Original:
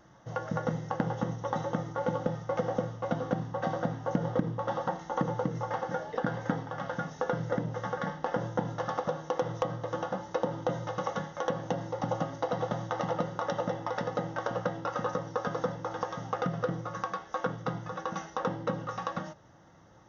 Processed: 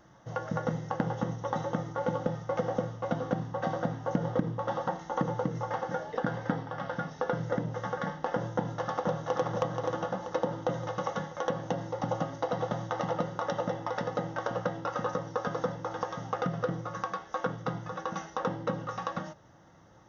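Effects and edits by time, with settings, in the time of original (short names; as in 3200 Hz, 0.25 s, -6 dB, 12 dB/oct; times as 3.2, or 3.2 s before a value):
6.4–7.33 steep low-pass 5900 Hz
8.56–9.44 echo throw 0.48 s, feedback 50%, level -4 dB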